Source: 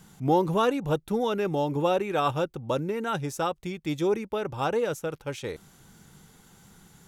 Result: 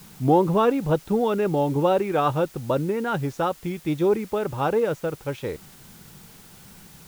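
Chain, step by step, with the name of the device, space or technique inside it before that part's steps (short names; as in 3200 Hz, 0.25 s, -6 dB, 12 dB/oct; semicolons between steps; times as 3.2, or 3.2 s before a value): cassette deck with a dirty head (tape spacing loss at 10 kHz 23 dB; wow and flutter; white noise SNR 26 dB); gain +5.5 dB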